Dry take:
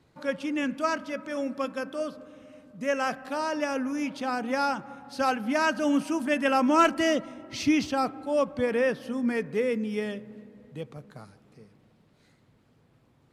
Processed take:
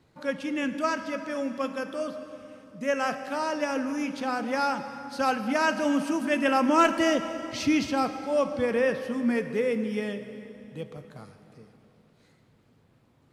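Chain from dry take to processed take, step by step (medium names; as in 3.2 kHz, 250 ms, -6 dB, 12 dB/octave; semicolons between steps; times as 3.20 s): plate-style reverb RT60 3 s, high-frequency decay 0.9×, DRR 9 dB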